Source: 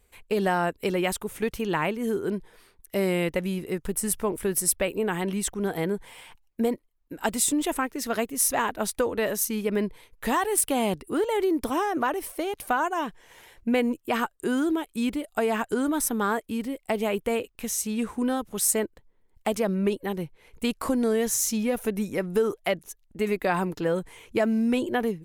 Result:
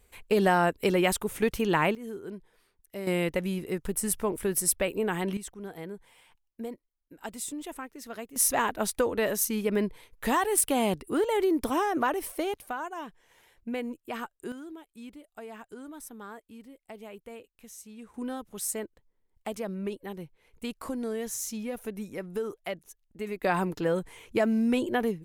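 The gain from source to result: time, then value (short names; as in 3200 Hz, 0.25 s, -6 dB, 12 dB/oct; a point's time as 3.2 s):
+1.5 dB
from 1.95 s -11.5 dB
from 3.07 s -2 dB
from 5.37 s -12.5 dB
from 8.36 s -1 dB
from 12.57 s -10 dB
from 14.52 s -18 dB
from 18.14 s -9 dB
from 23.43 s -1.5 dB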